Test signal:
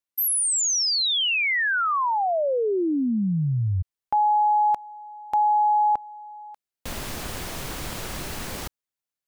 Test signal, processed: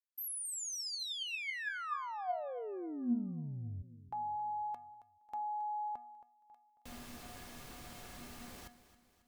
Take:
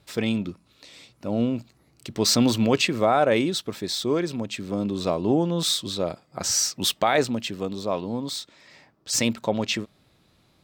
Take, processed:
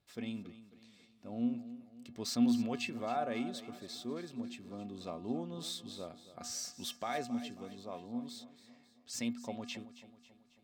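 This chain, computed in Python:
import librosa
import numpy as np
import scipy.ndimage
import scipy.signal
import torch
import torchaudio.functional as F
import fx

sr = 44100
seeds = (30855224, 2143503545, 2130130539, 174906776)

p1 = fx.comb_fb(x, sr, f0_hz=240.0, decay_s=0.6, harmonics='odd', damping=0.4, mix_pct=90)
y = p1 + fx.echo_feedback(p1, sr, ms=272, feedback_pct=49, wet_db=-15.0, dry=0)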